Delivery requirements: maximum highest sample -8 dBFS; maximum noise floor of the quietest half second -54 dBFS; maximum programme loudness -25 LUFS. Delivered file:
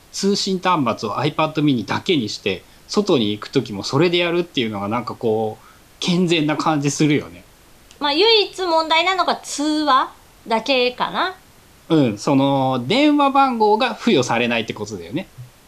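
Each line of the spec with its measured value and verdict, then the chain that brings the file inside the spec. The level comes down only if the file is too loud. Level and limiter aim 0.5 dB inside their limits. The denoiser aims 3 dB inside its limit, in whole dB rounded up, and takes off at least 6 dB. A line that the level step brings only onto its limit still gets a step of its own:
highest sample -5.0 dBFS: fail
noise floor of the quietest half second -48 dBFS: fail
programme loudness -18.5 LUFS: fail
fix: gain -7 dB

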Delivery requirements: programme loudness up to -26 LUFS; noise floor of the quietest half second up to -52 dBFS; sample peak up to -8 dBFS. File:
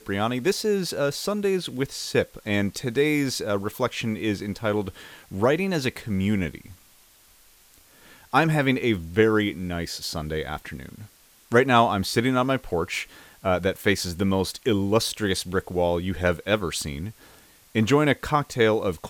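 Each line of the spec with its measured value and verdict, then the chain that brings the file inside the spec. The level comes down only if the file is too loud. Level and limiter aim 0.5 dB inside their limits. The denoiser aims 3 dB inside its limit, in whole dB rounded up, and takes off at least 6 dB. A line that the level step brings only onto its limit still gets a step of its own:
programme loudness -24.5 LUFS: fail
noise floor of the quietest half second -56 dBFS: OK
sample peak -5.5 dBFS: fail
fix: gain -2 dB; limiter -8.5 dBFS

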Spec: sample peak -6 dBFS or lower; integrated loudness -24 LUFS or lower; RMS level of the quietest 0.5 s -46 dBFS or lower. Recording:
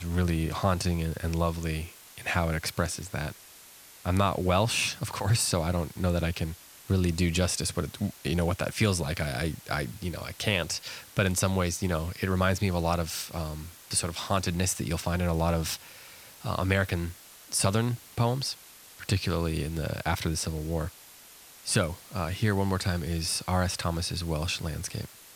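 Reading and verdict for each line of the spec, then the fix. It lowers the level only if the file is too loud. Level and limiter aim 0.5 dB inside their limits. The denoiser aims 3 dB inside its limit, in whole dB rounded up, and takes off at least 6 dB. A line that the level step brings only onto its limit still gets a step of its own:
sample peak -9.5 dBFS: OK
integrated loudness -29.0 LUFS: OK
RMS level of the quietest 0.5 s -51 dBFS: OK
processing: none

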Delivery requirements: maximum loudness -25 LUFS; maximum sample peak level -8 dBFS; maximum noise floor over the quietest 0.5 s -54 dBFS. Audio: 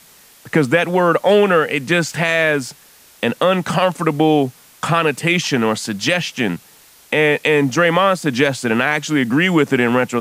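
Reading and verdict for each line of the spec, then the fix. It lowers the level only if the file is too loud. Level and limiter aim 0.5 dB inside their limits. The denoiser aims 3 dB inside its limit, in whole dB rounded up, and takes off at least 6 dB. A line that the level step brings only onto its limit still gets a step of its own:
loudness -16.5 LUFS: fail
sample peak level -2.5 dBFS: fail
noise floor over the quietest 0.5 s -47 dBFS: fail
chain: gain -9 dB

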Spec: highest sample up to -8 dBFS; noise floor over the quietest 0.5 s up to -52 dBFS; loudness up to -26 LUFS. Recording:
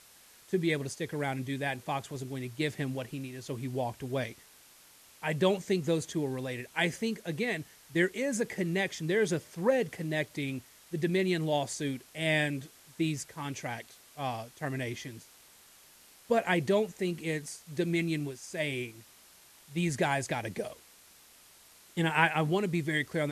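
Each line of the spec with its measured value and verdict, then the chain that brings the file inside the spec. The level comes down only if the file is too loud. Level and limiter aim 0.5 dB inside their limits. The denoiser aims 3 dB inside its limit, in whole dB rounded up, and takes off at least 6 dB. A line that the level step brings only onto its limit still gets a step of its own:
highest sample -9.5 dBFS: OK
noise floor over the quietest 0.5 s -58 dBFS: OK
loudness -32.0 LUFS: OK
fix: none

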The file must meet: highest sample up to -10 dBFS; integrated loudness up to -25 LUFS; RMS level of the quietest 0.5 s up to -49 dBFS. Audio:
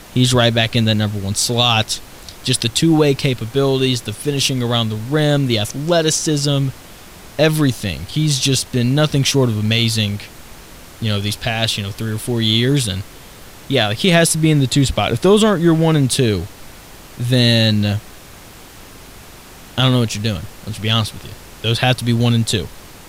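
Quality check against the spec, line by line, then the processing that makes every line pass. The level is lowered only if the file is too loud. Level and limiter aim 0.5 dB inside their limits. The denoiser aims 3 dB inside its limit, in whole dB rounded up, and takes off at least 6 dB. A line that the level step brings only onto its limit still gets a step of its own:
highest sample -2.0 dBFS: fail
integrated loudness -16.5 LUFS: fail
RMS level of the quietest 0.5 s -39 dBFS: fail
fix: denoiser 6 dB, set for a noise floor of -39 dBFS; gain -9 dB

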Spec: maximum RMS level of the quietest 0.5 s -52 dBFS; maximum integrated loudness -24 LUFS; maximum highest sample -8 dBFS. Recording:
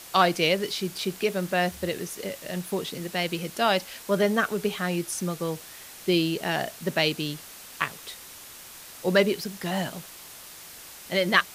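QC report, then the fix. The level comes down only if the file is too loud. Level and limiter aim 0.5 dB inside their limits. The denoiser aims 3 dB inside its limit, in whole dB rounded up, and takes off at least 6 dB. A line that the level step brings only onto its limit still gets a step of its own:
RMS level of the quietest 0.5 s -45 dBFS: fail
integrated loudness -27.0 LUFS: OK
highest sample -4.5 dBFS: fail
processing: denoiser 10 dB, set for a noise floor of -45 dBFS; limiter -8.5 dBFS

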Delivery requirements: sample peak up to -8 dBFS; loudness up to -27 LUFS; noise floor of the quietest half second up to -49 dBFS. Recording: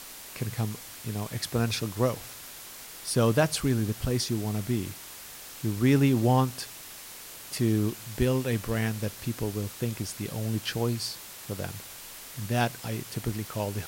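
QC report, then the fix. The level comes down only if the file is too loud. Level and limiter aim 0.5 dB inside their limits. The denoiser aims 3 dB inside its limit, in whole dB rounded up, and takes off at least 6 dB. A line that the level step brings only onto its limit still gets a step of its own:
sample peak -10.5 dBFS: OK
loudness -29.0 LUFS: OK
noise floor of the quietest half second -44 dBFS: fail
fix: denoiser 8 dB, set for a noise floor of -44 dBFS

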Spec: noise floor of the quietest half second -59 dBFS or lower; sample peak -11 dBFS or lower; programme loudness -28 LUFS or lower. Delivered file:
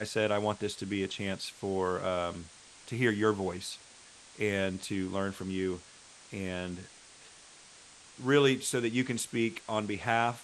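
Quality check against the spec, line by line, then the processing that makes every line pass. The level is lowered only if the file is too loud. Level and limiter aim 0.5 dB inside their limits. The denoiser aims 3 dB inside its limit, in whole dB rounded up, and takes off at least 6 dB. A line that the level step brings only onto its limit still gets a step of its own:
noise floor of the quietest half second -55 dBFS: fail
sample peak -12.0 dBFS: OK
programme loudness -32.0 LUFS: OK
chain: denoiser 7 dB, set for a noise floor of -55 dBFS

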